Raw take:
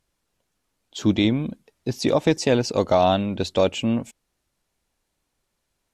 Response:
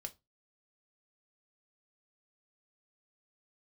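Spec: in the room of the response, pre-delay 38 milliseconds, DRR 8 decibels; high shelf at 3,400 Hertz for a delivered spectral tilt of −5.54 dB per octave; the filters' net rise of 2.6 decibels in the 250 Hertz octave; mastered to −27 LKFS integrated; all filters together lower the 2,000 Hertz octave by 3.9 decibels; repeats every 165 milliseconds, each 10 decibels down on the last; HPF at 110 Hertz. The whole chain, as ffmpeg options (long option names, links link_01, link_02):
-filter_complex "[0:a]highpass=110,equalizer=frequency=250:width_type=o:gain=3.5,equalizer=frequency=2000:width_type=o:gain=-7,highshelf=frequency=3400:gain=5,aecho=1:1:165|330|495|660:0.316|0.101|0.0324|0.0104,asplit=2[link_01][link_02];[1:a]atrim=start_sample=2205,adelay=38[link_03];[link_02][link_03]afir=irnorm=-1:irlink=0,volume=-4.5dB[link_04];[link_01][link_04]amix=inputs=2:normalize=0,volume=-7dB"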